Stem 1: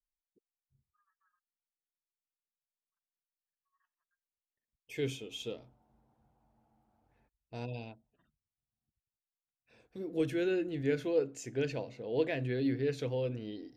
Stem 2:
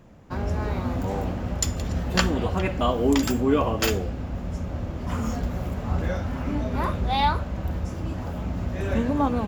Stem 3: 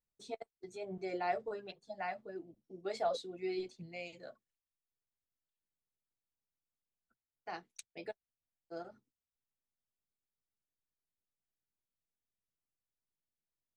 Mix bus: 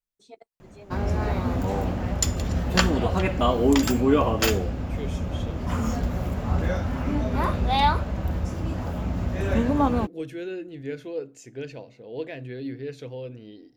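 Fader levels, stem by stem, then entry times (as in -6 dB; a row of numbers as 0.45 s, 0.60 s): -2.0 dB, +1.5 dB, -4.0 dB; 0.00 s, 0.60 s, 0.00 s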